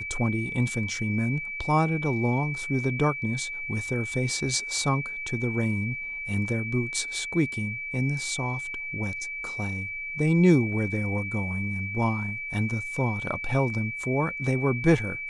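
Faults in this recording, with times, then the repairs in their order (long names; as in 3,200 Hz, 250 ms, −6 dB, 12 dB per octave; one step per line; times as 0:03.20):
whistle 2,300 Hz −32 dBFS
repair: notch filter 2,300 Hz, Q 30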